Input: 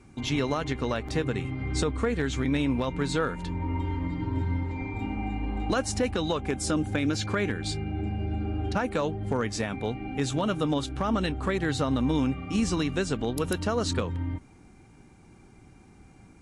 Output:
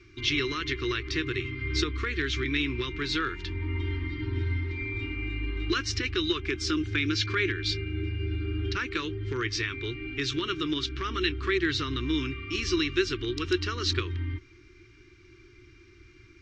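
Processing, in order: FFT filter 110 Hz 0 dB, 210 Hz -22 dB, 360 Hz +8 dB, 540 Hz -25 dB, 770 Hz -28 dB, 1.1 kHz -3 dB, 2.1 kHz +7 dB, 3.3 kHz +7 dB, 5.6 kHz +5 dB, 10 kHz -29 dB

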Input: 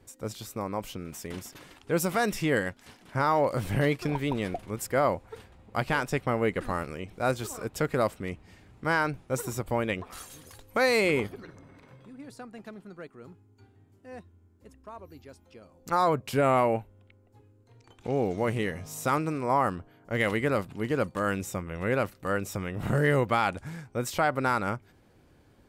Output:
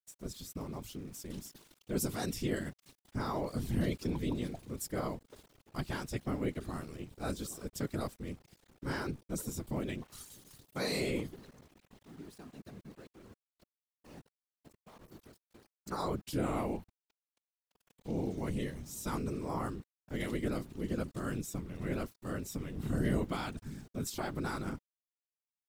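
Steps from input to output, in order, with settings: high-order bell 1.1 kHz -10 dB 2.9 oct; small samples zeroed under -49.5 dBFS; whisper effect; trim -4.5 dB

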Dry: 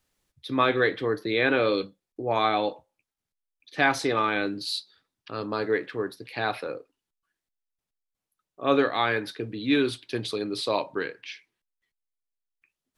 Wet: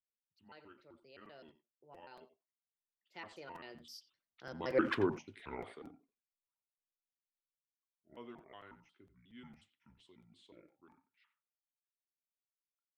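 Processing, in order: pitch shift switched off and on -7.5 st, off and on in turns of 155 ms; Doppler pass-by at 4.92 s, 57 m/s, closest 3.2 m; speakerphone echo 90 ms, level -13 dB; crackling interface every 0.23 s, samples 256, repeat, from 0.79 s; trim +4.5 dB

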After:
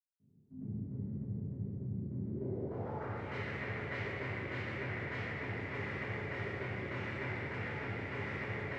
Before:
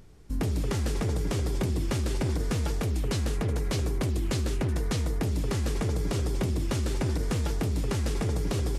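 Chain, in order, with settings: graphic EQ with 31 bands 160 Hz -7 dB, 2 kHz +8 dB, 10 kHz -5 dB; short-mantissa float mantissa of 2-bit; low-pass sweep 200 Hz -> 2.1 kHz, 1.88–3.04 s; dynamic bell 300 Hz, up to -5 dB, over -41 dBFS, Q 1.3; high-pass 110 Hz 24 dB/octave; reverberation RT60 2.5 s, pre-delay 197 ms; trim +7 dB

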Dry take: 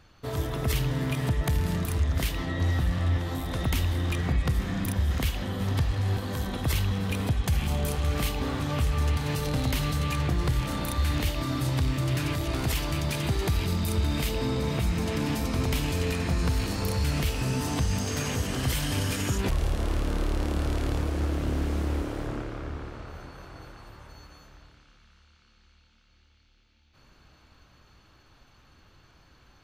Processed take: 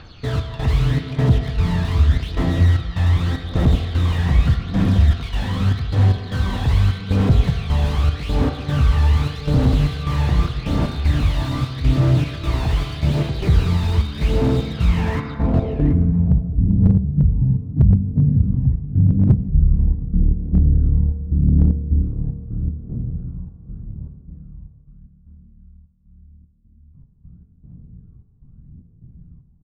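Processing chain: 19.28–21.14 s: resonant high shelf 2.8 kHz -12.5 dB, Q 3; in parallel at -2 dB: compression 8:1, threshold -35 dBFS, peak gain reduction 14.5 dB; on the sum: low-pass sweep 4 kHz -> 180 Hz, 14.83–16.14 s; trance gate "xx.xx.x.xxx." 76 bpm -12 dB; phaser 0.83 Hz, delay 1.2 ms, feedback 57%; delay 734 ms -19.5 dB; on a send at -7 dB: reverberation RT60 1.5 s, pre-delay 3 ms; on the sum: slew-rate limiter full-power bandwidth 40 Hz; trim +3.5 dB

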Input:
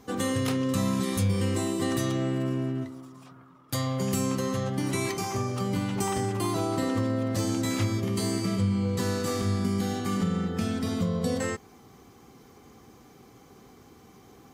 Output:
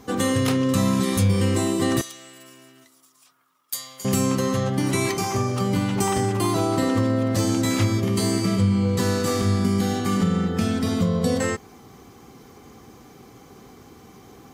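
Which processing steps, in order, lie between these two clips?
2.01–4.05 s: differentiator; trim +6 dB

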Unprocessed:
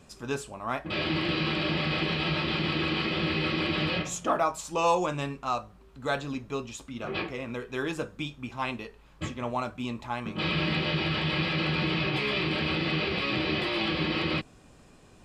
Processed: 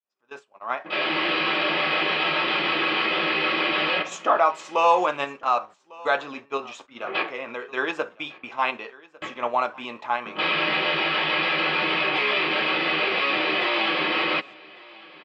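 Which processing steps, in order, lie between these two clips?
fade-in on the opening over 1.25 s; high-pass 590 Hz 12 dB/octave; gate -48 dBFS, range -18 dB; peaking EQ 4.3 kHz -4 dB 0.55 oct; in parallel at -1.5 dB: level held to a coarse grid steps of 18 dB; on the sum: distance through air 180 m; delay 1151 ms -22.5 dB; trim +7 dB

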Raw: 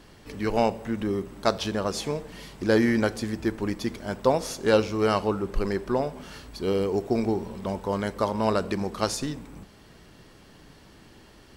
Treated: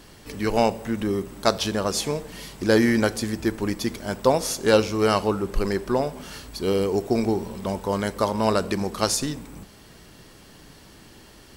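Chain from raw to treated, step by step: treble shelf 5.7 kHz +9 dB; trim +2.5 dB

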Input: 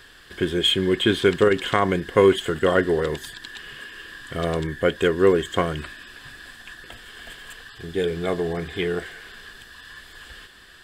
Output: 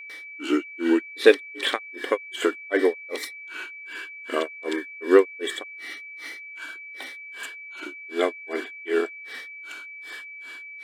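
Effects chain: granulator 261 ms, grains 2.6 per s, pitch spread up and down by 3 st; whistle 2.3 kHz -43 dBFS; brick-wall FIR high-pass 240 Hz; trim +5 dB

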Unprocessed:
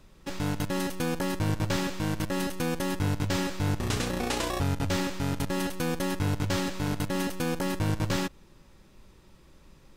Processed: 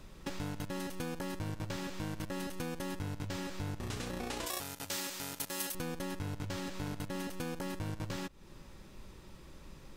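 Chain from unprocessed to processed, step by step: compression 6:1, threshold -40 dBFS, peak gain reduction 15.5 dB; 4.46–5.75 s: RIAA curve recording; trim +3 dB

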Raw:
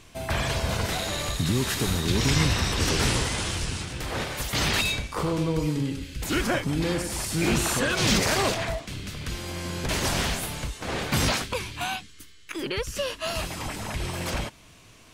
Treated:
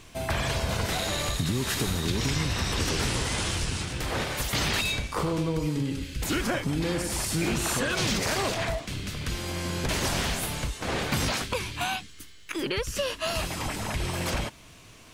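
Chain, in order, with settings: compression, threshold -25 dBFS, peak gain reduction 8 dB; added noise pink -70 dBFS; trim +1.5 dB

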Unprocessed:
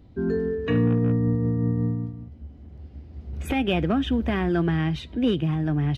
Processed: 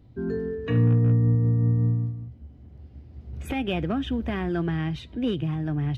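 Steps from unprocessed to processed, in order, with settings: peaking EQ 120 Hz +10 dB 0.21 oct; trim -4 dB

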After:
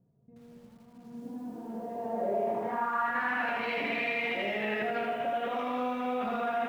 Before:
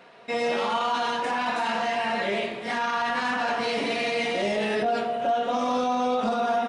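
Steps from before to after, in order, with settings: peak limiter -26.5 dBFS, peak gain reduction 11.5 dB; low-pass sweep 120 Hz -> 2.3 kHz, 0.69–3.49 s; bit-crushed delay 80 ms, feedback 35%, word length 10-bit, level -3.5 dB; trim -1.5 dB

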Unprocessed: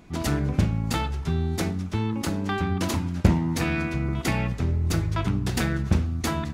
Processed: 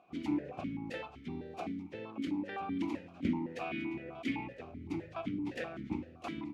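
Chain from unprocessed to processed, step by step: harmony voices +3 st -12 dB, +7 st -15 dB; stepped vowel filter 7.8 Hz

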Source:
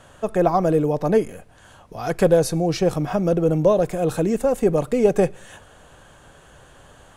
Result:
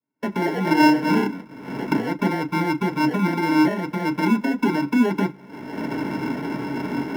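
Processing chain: recorder AGC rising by 53 dB/s; gate -34 dBFS, range -34 dB; cascade formant filter u; peaking EQ 470 Hz -13.5 dB 0.83 oct; 0.60–1.27 s: flutter echo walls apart 5.1 m, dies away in 0.62 s; sample-and-hold 36×; Chebyshev shaper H 4 -24 dB, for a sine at -10 dBFS; reverberation, pre-delay 3 ms, DRR 0.5 dB; trim -1 dB

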